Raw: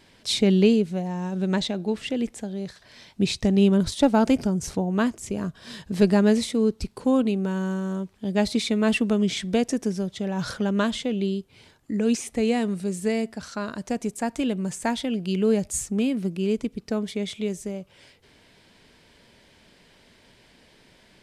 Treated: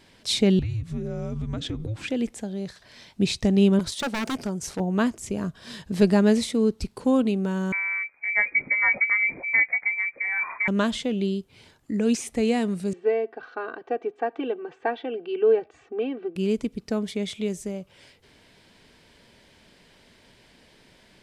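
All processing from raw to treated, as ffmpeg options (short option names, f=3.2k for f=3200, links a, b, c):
-filter_complex "[0:a]asettb=1/sr,asplit=3[a][b][c];[a]atrim=end=0.594[d];[b]atrim=start=0.59:end=2.08,asetpts=PTS-STARTPTS,afade=t=in:d=0.004:c=qsin,afade=t=out:st=1.486:d=0.004:c=qsin,equalizer=f=640:t=o:w=1.3:g=13,acompressor=threshold=-27dB:ratio=6:attack=3.2:release=140:knee=1:detection=peak,afreqshift=-330[e];[c]atrim=start=2.076[f];[d][e]acrossfade=d=0.004:c1=hsin:c2=qsin[g];[g][f]acrossfade=d=0.004:c1=qsin:c2=hsin,asettb=1/sr,asplit=3[h][i][j];[h]atrim=end=3.794[k];[i]atrim=start=3.79:end=4.8,asetpts=PTS-STARTPTS,afade=t=in:d=0.004:c=qsin,afade=t=out:st=1.006:d=0.004:c=qsin,lowshelf=f=240:g=-10,aeval=exprs='0.0891*(abs(mod(val(0)/0.0891+3,4)-2)-1)':c=same[l];[j]atrim=start=4.796[m];[k][l]acrossfade=d=0.004:c1=hsin:c2=qsin[n];[n][m]acrossfade=d=0.004:c1=qsin:c2=hsin,asettb=1/sr,asplit=3[o][p][q];[o]atrim=end=7.724[r];[p]atrim=start=7.72:end=10.68,asetpts=PTS-STARTPTS,afade=t=in:d=0.004:c=qsin,afade=t=out:st=2.956:d=0.004:c=qsin,asplit=2[s][t];[t]adelay=17,volume=-11dB[u];[s][u]amix=inputs=2:normalize=0,atrim=end_sample=130536,lowpass=f=2.1k:t=q:w=0.5098,lowpass=f=2.1k:t=q:w=0.6013,lowpass=f=2.1k:t=q:w=0.9,lowpass=f=2.1k:t=q:w=2.563,afreqshift=-2500[v];[q]atrim=start=10.676[w];[r][v]acrossfade=d=0.004:c1=hsin:c2=qsin[x];[x][w]acrossfade=d=0.004:c1=qsin:c2=hsin,asettb=1/sr,asplit=3[y][z][aa];[y]atrim=end=12.934[ab];[z]atrim=start=12.93:end=16.36,asetpts=PTS-STARTPTS,afade=t=in:d=0.004:c=qsin,afade=t=out:st=3.426:d=0.004:c=qsin,highpass=390,equalizer=f=490:t=q:w=4:g=3,equalizer=f=1.1k:t=q:w=4:g=-3,equalizer=f=2.1k:t=q:w=4:g=-9,lowpass=f=2.4k:w=0.5412,lowpass=f=2.4k:w=1.3066,aecho=1:1:2.6:0.99,atrim=end_sample=151263[ac];[aa]atrim=start=16.356[ad];[ab][ac]acrossfade=d=0.004:c1=hsin:c2=qsin[ae];[ae][ad]acrossfade=d=0.004:c1=qsin:c2=hsin"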